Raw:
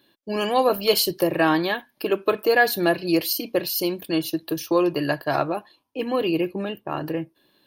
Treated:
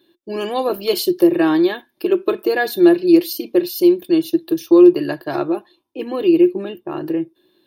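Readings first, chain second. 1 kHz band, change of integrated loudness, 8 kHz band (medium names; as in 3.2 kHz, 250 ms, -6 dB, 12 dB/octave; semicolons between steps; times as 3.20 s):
-2.0 dB, +6.5 dB, -2.5 dB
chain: small resonant body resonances 350/3600 Hz, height 17 dB, ringing for 75 ms; trim -2.5 dB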